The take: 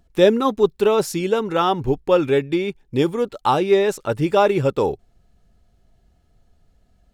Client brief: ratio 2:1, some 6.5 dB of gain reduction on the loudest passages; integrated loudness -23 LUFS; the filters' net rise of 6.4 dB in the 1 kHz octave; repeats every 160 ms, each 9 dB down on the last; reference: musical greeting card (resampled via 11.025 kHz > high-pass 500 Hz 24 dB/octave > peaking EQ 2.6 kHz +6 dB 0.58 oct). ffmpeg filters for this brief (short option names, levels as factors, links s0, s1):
-af "equalizer=f=1000:t=o:g=8,acompressor=threshold=0.112:ratio=2,aecho=1:1:160|320|480|640:0.355|0.124|0.0435|0.0152,aresample=11025,aresample=44100,highpass=f=500:w=0.5412,highpass=f=500:w=1.3066,equalizer=f=2600:t=o:w=0.58:g=6,volume=1.06"